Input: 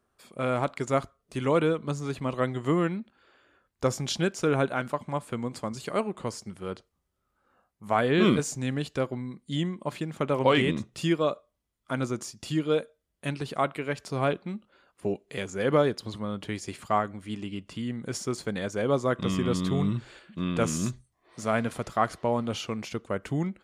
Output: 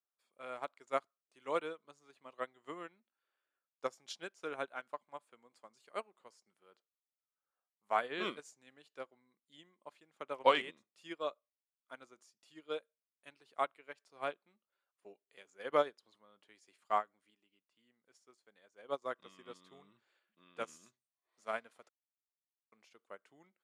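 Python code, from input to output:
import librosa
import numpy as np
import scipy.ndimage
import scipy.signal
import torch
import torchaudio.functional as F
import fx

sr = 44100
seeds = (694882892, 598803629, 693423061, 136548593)

y = fx.upward_expand(x, sr, threshold_db=-40.0, expansion=1.5, at=(17.3, 19.02))
y = fx.high_shelf(y, sr, hz=3800.0, db=-4.5, at=(19.78, 20.42))
y = fx.edit(y, sr, fx.silence(start_s=21.89, length_s=0.83), tone=tone)
y = scipy.signal.sosfilt(scipy.signal.bessel(2, 640.0, 'highpass', norm='mag', fs=sr, output='sos'), y)
y = fx.high_shelf(y, sr, hz=8800.0, db=-4.5)
y = fx.upward_expand(y, sr, threshold_db=-38.0, expansion=2.5)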